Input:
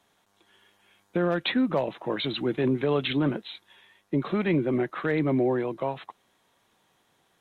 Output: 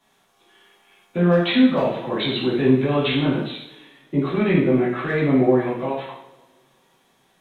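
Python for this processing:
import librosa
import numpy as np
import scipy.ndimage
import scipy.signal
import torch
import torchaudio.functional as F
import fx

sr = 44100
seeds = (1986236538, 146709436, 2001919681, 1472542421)

y = fx.rev_double_slope(x, sr, seeds[0], early_s=0.68, late_s=2.1, knee_db=-23, drr_db=-8.0)
y = y * librosa.db_to_amplitude(-2.5)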